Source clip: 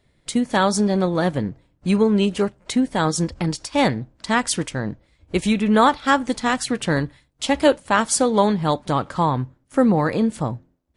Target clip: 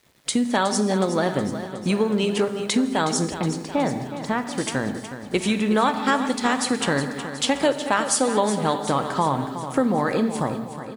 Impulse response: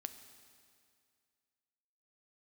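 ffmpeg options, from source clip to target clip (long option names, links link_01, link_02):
-filter_complex "[0:a]highpass=frequency=240:poles=1[link_01];[1:a]atrim=start_sample=2205,afade=type=out:start_time=0.26:duration=0.01,atrim=end_sample=11907[link_02];[link_01][link_02]afir=irnorm=-1:irlink=0,acompressor=threshold=-30dB:ratio=2.5,asettb=1/sr,asplit=3[link_03][link_04][link_05];[link_03]atrim=end=3.344[link_06];[link_04]atrim=start=3.34:end=4.58,asetpts=PTS-STARTPTS,afade=type=in:duration=0.004:curve=qsin,afade=type=out:start_time=1.236:duration=0.004:curve=qsin,lowpass=frequency=1000:poles=1[link_07];[link_05]atrim=start=4.576[link_08];[link_06][link_07]acrossfade=duration=0.004:curve1=hsin:curve2=qsin[link_09];[link_09][link_08]acrossfade=duration=0.004:curve1=qsin:curve2=hsin,acrusher=bits=10:mix=0:aa=0.000001,aecho=1:1:367|734|1101|1468|1835|2202|2569:0.266|0.157|0.0926|0.0546|0.0322|0.019|0.0112,volume=9dB"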